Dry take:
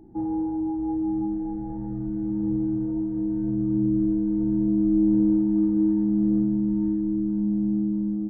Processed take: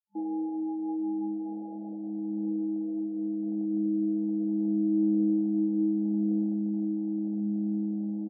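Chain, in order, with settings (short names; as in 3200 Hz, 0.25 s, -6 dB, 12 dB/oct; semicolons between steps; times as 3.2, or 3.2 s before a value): sample gate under -36.5 dBFS; FFT band-pass 200–870 Hz; outdoor echo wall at 290 m, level -27 dB; gain -5 dB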